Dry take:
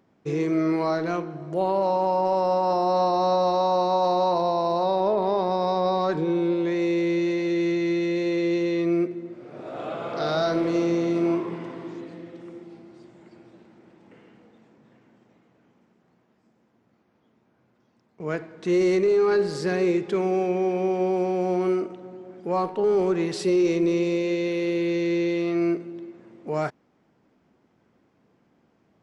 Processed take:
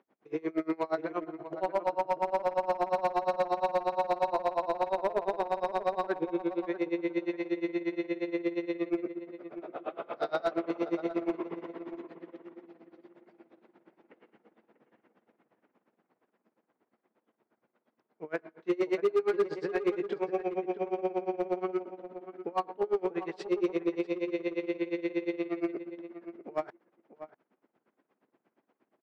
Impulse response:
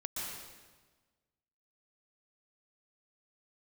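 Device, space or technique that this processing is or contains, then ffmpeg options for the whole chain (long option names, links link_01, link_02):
helicopter radio: -filter_complex "[0:a]asettb=1/sr,asplit=3[link_01][link_02][link_03];[link_01]atrim=end=18.364[link_04];[link_02]atrim=start=18.36:end=20.38,asetpts=PTS-STARTPTS,afade=type=in:duration=0.004:curve=qsin,afade=type=out:start_time=2.016:duration=0.004:curve=qsin,asplit=2[link_05][link_06];[link_06]adelay=25,volume=-6dB[link_07];[link_05][link_07]amix=inputs=2:normalize=0,atrim=end_sample=89082[link_08];[link_03]atrim=start=20.376[link_09];[link_04][link_08]acrossfade=duration=0.004:curve1=hsin:curve2=qsin[link_10];[link_10][link_09]acrossfade=duration=0.004:curve1=qsin:curve2=hsin,highpass=330,lowpass=2700,aeval=exprs='val(0)*pow(10,-31*(0.5-0.5*cos(2*PI*8.5*n/s))/20)':channel_layout=same,asoftclip=type=hard:threshold=-21dB,asplit=2[link_11][link_12];[link_12]adelay=641.4,volume=-12dB,highshelf=frequency=4000:gain=-14.4[link_13];[link_11][link_13]amix=inputs=2:normalize=0"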